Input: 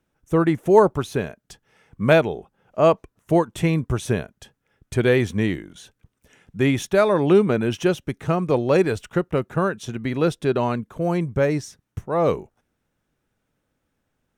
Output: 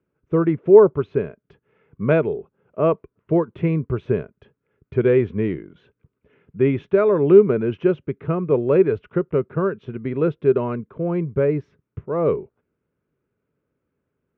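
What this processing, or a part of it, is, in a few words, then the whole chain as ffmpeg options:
bass cabinet: -af "highpass=65,equalizer=frequency=150:width_type=q:width=4:gain=3,equalizer=frequency=410:width_type=q:width=4:gain=9,equalizer=frequency=780:width_type=q:width=4:gain=-10,equalizer=frequency=1800:width_type=q:width=4:gain=-7,lowpass=frequency=2300:width=0.5412,lowpass=frequency=2300:width=1.3066,volume=-2dB"

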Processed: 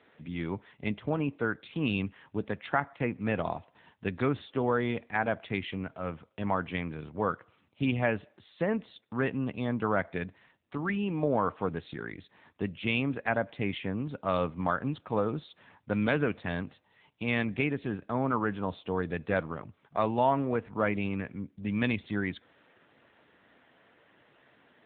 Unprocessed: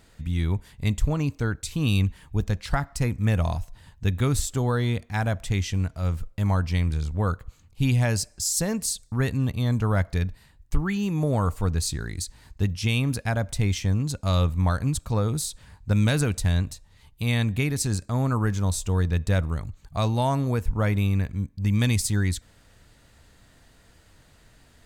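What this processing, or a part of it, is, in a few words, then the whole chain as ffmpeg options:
telephone: -af "highpass=270,lowpass=3200,volume=1.5dB" -ar 8000 -c:a libopencore_amrnb -b:a 7950

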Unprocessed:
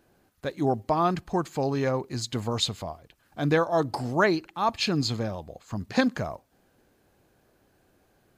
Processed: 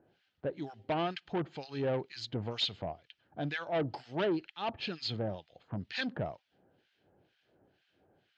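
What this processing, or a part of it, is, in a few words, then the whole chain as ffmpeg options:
guitar amplifier with harmonic tremolo: -filter_complex "[0:a]asettb=1/sr,asplit=3[link_01][link_02][link_03];[link_01]atrim=end=3.454[link_04];[link_02]atrim=start=3.45:end=4.14,asetpts=PTS-STARTPTS,afade=type=in:duration=0.004:curve=qsin,afade=type=out:start_time=0.686:duration=0.004:curve=qsin,equalizer=frequency=3800:width=0.76:gain=-4[link_05];[link_03]atrim=start=4.136[link_06];[link_04][link_05]acrossfade=duration=0.004:curve1=hsin:curve2=qsin[link_07];[link_07][link_06]acrossfade=duration=0.004:curve1=qsin:curve2=hsin,acrossover=split=1400[link_08][link_09];[link_08]aeval=exprs='val(0)*(1-1/2+1/2*cos(2*PI*2.1*n/s))':channel_layout=same[link_10];[link_09]aeval=exprs='val(0)*(1-1/2-1/2*cos(2*PI*2.1*n/s))':channel_layout=same[link_11];[link_10][link_11]amix=inputs=2:normalize=0,asoftclip=type=tanh:threshold=-26dB,highpass=97,equalizer=frequency=230:width_type=q:width=4:gain=-4,equalizer=frequency=1100:width_type=q:width=4:gain=-9,equalizer=frequency=3100:width_type=q:width=4:gain=7,lowpass=frequency=4500:width=0.5412,lowpass=frequency=4500:width=1.3066"

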